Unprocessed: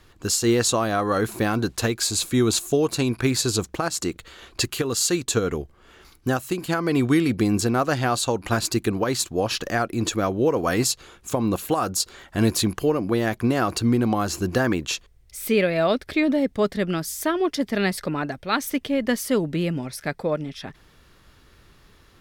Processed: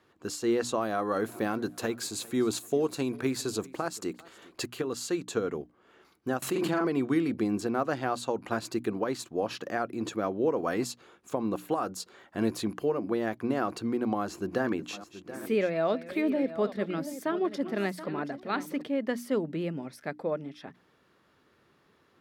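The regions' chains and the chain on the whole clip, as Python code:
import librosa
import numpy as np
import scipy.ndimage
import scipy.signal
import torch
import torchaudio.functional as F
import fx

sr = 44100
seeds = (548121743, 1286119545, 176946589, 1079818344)

y = fx.chain(x, sr, fx.high_shelf(hz=8300.0, db=9.0),
    fx.echo_feedback(ms=399, feedback_pct=35, wet_db=-22), at=(0.81, 4.66))
y = fx.chain(y, sr, fx.high_shelf(hz=9900.0, db=-8.5),
    fx.doubler(ms=45.0, db=-2.5),
    fx.env_flatten(amount_pct=100), at=(6.42, 6.87))
y = fx.chain(y, sr, fx.reverse_delay(ms=420, wet_db=-14),
    fx.echo_single(ms=728, db=-13.5), at=(14.2, 18.83))
y = scipy.signal.sosfilt(scipy.signal.butter(2, 190.0, 'highpass', fs=sr, output='sos'), y)
y = fx.high_shelf(y, sr, hz=2600.0, db=-12.0)
y = fx.hum_notches(y, sr, base_hz=60, count=5)
y = y * 10.0 ** (-5.5 / 20.0)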